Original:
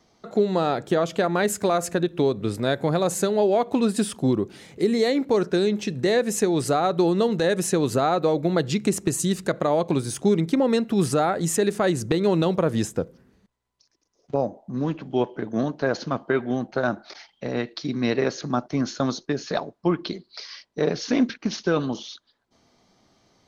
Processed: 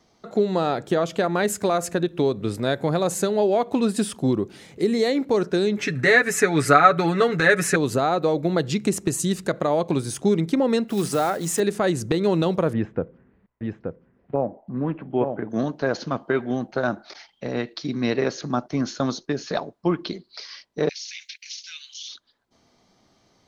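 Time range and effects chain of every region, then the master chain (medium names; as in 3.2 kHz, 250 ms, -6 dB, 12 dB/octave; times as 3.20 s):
5.77–7.76 s: high-order bell 1.7 kHz +13 dB 1.2 oct + comb 7 ms, depth 72%
10.88–11.60 s: block-companded coder 5-bit + bass shelf 170 Hz -7 dB + hum notches 60/120/180 Hz
12.73–15.50 s: low-pass 2.4 kHz 24 dB/octave + delay 877 ms -5 dB
20.89–22.09 s: Chebyshev high-pass 2.2 kHz, order 4 + tilt EQ +2.5 dB/octave + compression, threshold -32 dBFS
whole clip: none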